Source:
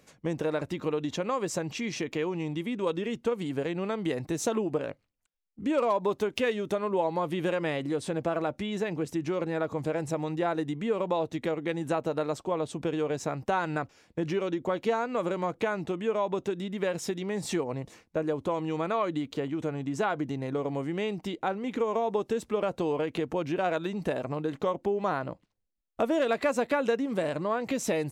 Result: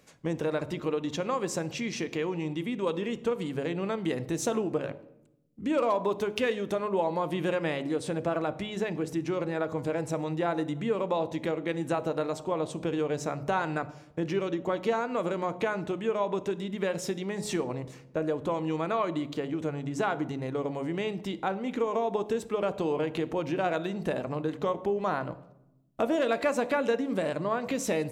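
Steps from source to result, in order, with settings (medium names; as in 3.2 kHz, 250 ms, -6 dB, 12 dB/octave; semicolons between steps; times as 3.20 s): de-hum 70.09 Hz, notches 14; on a send: reverberation RT60 0.85 s, pre-delay 3 ms, DRR 16 dB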